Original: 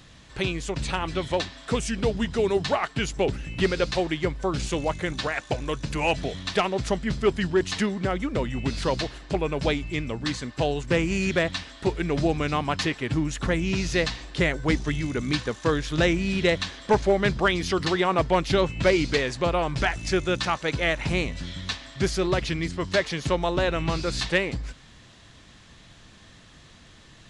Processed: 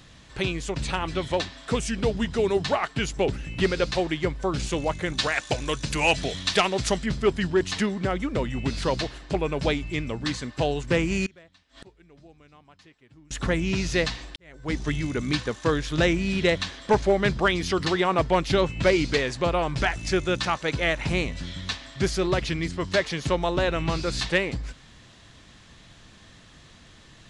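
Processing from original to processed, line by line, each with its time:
0:05.18–0:07.06: high-shelf EQ 2,300 Hz +9 dB
0:11.26–0:13.31: gate with flip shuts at −31 dBFS, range −28 dB
0:14.36–0:14.84: fade in quadratic

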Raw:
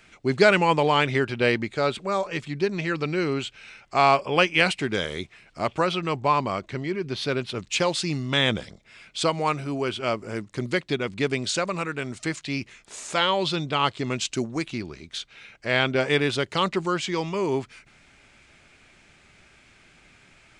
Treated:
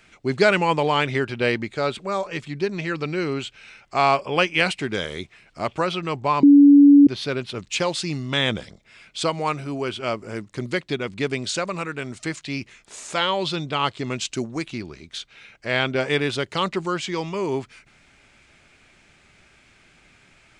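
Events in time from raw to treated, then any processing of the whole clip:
0:06.43–0:07.07: beep over 285 Hz −7 dBFS

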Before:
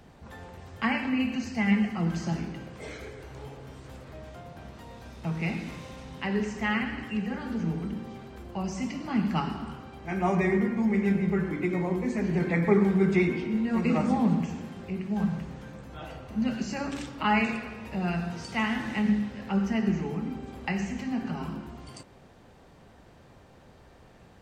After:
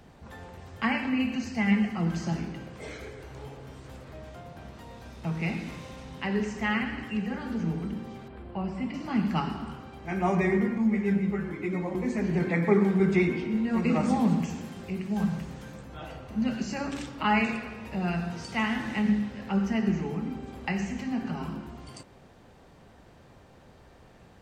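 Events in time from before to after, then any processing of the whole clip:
0:08.28–0:08.94: moving average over 7 samples
0:10.78–0:11.95: string-ensemble chorus
0:12.48–0:13.00: high-pass filter 120 Hz
0:14.03–0:15.83: high-shelf EQ 4,600 Hz +9 dB

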